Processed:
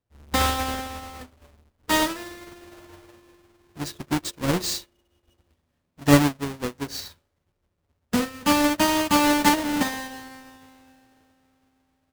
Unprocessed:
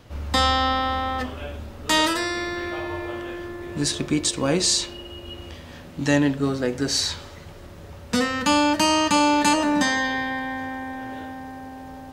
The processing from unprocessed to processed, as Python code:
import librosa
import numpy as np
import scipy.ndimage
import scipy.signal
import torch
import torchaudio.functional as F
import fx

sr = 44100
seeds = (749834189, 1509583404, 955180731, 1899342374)

y = fx.halfwave_hold(x, sr)
y = fx.upward_expand(y, sr, threshold_db=-36.0, expansion=2.5)